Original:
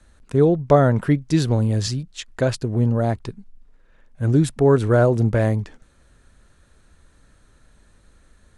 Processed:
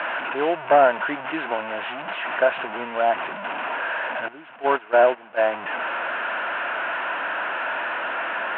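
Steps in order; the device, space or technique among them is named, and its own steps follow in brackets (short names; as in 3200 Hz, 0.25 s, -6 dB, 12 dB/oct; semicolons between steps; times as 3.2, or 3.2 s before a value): digital answering machine (BPF 360–3100 Hz; delta modulation 16 kbps, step -25.5 dBFS; speaker cabinet 360–3500 Hz, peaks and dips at 440 Hz -6 dB, 670 Hz +9 dB, 950 Hz +9 dB, 1500 Hz +10 dB, 2700 Hz +7 dB); 4.28–5.41 gate -18 dBFS, range -15 dB; gain -1 dB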